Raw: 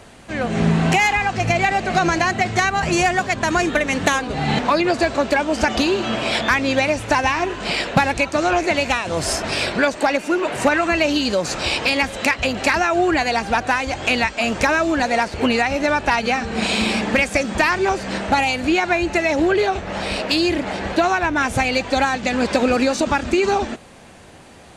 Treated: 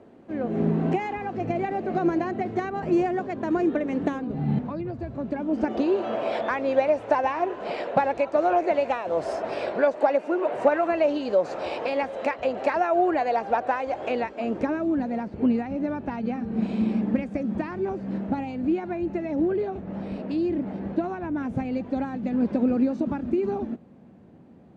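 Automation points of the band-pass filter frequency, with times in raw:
band-pass filter, Q 1.6
3.96 s 330 Hz
4.98 s 100 Hz
5.99 s 570 Hz
13.97 s 570 Hz
15.01 s 210 Hz

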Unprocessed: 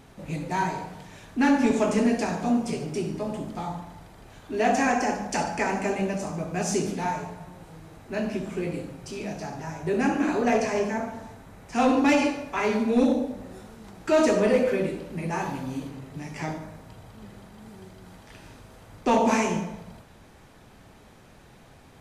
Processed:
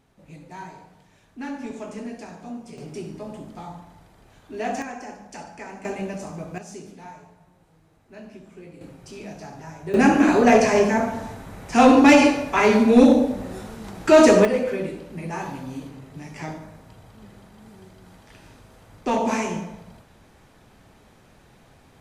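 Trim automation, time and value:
-12 dB
from 2.78 s -5 dB
from 4.82 s -12 dB
from 5.85 s -3 dB
from 6.58 s -13.5 dB
from 8.81 s -4 dB
from 9.94 s +8 dB
from 14.45 s -1.5 dB

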